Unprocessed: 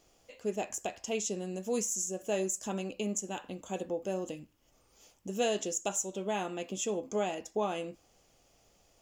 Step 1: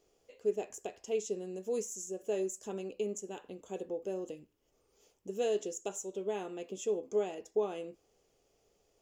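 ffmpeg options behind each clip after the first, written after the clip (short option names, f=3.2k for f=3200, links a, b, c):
-af "equalizer=f=420:w=2.8:g=13,volume=-9dB"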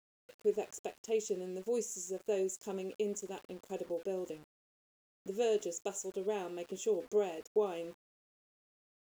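-af "aeval=exprs='val(0)*gte(abs(val(0)),0.00224)':c=same"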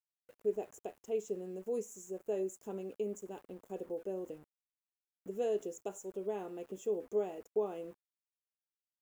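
-af "equalizer=f=4.4k:t=o:w=2:g=-12,volume=-1.5dB"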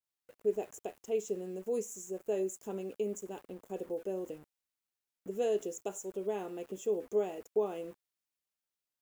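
-af "adynamicequalizer=threshold=0.00282:dfrequency=1800:dqfactor=0.7:tfrequency=1800:tqfactor=0.7:attack=5:release=100:ratio=0.375:range=2:mode=boostabove:tftype=highshelf,volume=2.5dB"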